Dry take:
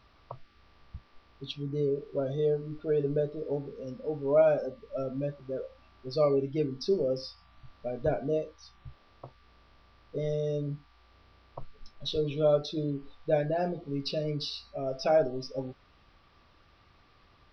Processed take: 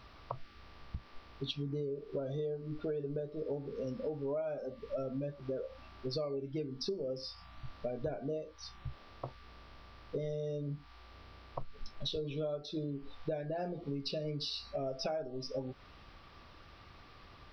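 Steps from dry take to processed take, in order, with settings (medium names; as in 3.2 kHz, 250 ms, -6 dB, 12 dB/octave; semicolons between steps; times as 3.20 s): compression 12:1, threshold -40 dBFS, peak gain reduction 22 dB; trim +5.5 dB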